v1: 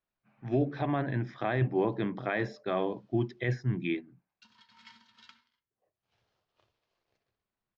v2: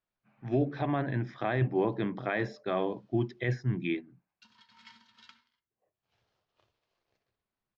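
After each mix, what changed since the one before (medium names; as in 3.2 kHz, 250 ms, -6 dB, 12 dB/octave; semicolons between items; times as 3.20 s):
no change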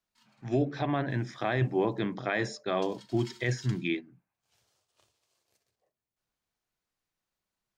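background: entry -1.60 s; master: remove distance through air 240 m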